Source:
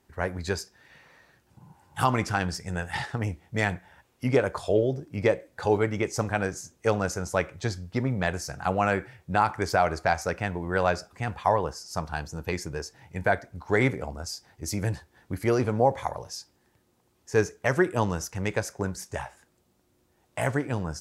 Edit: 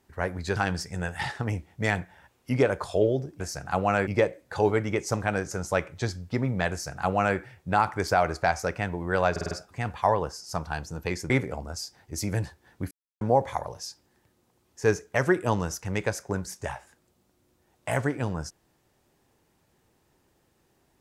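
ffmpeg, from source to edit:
-filter_complex "[0:a]asplit=12[a][b][c][d][e][f][g][h][i][j][k][l];[a]atrim=end=0.562[m];[b]atrim=start=2.298:end=5.142[n];[c]atrim=start=8.328:end=9.002[o];[d]atrim=start=5.138:end=6.582[p];[e]atrim=start=7.128:end=10.982[q];[f]atrim=start=10.928:end=10.982[r];[g]atrim=start=10.928:end=10.982[s];[h]atrim=start=10.928:end=10.982[t];[i]atrim=start=10.928:end=12.722[u];[j]atrim=start=13.798:end=15.41,asetpts=PTS-STARTPTS,afade=t=out:st=1.608:d=0.004:c=hsin[v];[k]atrim=start=15.41:end=15.71,asetpts=PTS-STARTPTS,volume=0[w];[l]atrim=start=15.71,asetpts=PTS-STARTPTS,afade=t=in:d=0.004:c=hsin[x];[m][n]acrossfade=d=0.004:c1=hsin:c2=hsin[y];[y][o]acrossfade=d=0.004:c1=hsin:c2=hsin[z];[z][p]acrossfade=d=0.004:c1=hsin:c2=hsin[aa];[aa][q]acrossfade=d=0.004:c1=hsin:c2=hsin[ab];[ab][r]acrossfade=d=0.004:c1=hsin:c2=hsin[ac];[ac][s]acrossfade=d=0.004:c1=hsin:c2=hsin[ad];[ad][t]acrossfade=d=0.004:c1=hsin:c2=hsin[ae];[ae][u]acrossfade=d=0.004:c1=hsin:c2=hsin[af];[v][w][x]concat=n=3:v=0:a=1[ag];[af][ag]acrossfade=d=0.004:c1=hsin:c2=hsin"

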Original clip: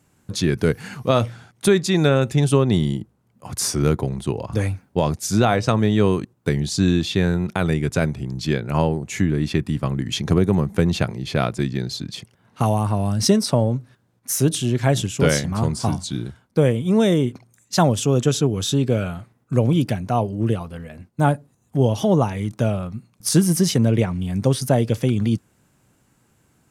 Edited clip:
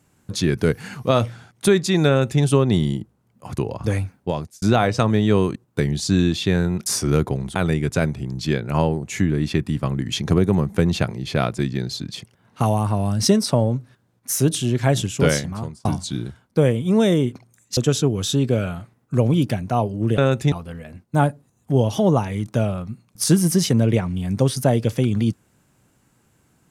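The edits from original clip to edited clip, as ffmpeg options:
-filter_complex "[0:a]asplit=9[a][b][c][d][e][f][g][h][i];[a]atrim=end=3.582[j];[b]atrim=start=4.268:end=5.31,asetpts=PTS-STARTPTS,afade=t=out:st=0.552:d=0.49[k];[c]atrim=start=5.31:end=7.552,asetpts=PTS-STARTPTS,afade=t=in:d=0.004:c=hsin[l];[d]atrim=start=3.578:end=4.272[m];[e]atrim=start=7.548:end=15.85,asetpts=PTS-STARTPTS,afade=t=out:st=7.732:d=0.57[n];[f]atrim=start=15.85:end=17.772,asetpts=PTS-STARTPTS,afade=t=in:d=0.004:c=hsin[o];[g]atrim=start=18.158:end=20.572[p];[h]atrim=start=2.078:end=2.422[q];[i]atrim=start=20.568[r];[k][l]concat=n=2:v=0:a=1[s];[j][s]acrossfade=d=0.004:c1=hsin:c2=hsin[t];[t][m]acrossfade=d=0.004:c1=hsin:c2=hsin[u];[n][o]concat=n=2:v=0:a=1[v];[u][v]acrossfade=d=0.004:c1=hsin:c2=hsin[w];[w][p]acrossfade=d=0.004:c1=hsin:c2=hsin[x];[x][q]acrossfade=d=0.004:c1=hsin:c2=hsin[y];[y][r]acrossfade=d=0.004:c1=hsin:c2=hsin"

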